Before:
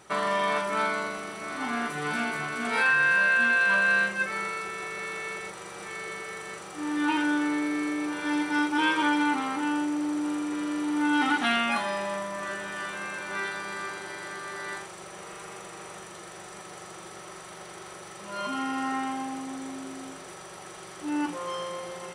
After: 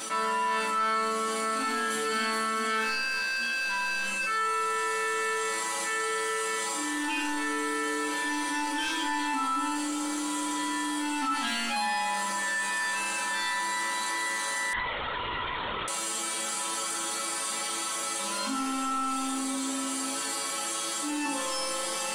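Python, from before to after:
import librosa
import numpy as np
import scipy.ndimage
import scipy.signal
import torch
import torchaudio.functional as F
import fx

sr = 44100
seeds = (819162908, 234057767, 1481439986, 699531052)

p1 = scipy.signal.sosfilt(scipy.signal.butter(2, 74.0, 'highpass', fs=sr, output='sos'), x)
p2 = fx.high_shelf(p1, sr, hz=2900.0, db=12.0)
p3 = p2 + 0.62 * np.pad(p2, (int(3.9 * sr / 1000.0), 0))[:len(p2)]
p4 = fx.rider(p3, sr, range_db=5, speed_s=0.5)
p5 = p3 + (p4 * librosa.db_to_amplitude(-1.0))
p6 = 10.0 ** (-11.0 / 20.0) * np.tanh(p5 / 10.0 ** (-11.0 / 20.0))
p7 = fx.resonator_bank(p6, sr, root=57, chord='major', decay_s=0.5)
p8 = p7 + fx.echo_single(p7, sr, ms=403, db=-20.5, dry=0)
p9 = fx.lpc_vocoder(p8, sr, seeds[0], excitation='whisper', order=16, at=(14.73, 15.88))
p10 = fx.env_flatten(p9, sr, amount_pct=70)
y = p10 * librosa.db_to_amplitude(3.0)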